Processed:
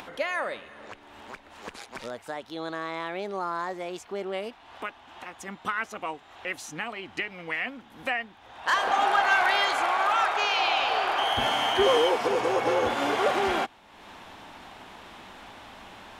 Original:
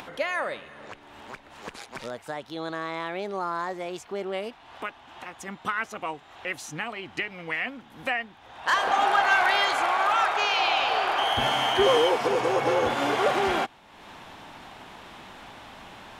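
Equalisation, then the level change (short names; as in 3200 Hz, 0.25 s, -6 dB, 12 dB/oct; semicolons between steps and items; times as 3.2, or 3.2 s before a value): bell 140 Hz -10 dB 0.23 oct; -1.0 dB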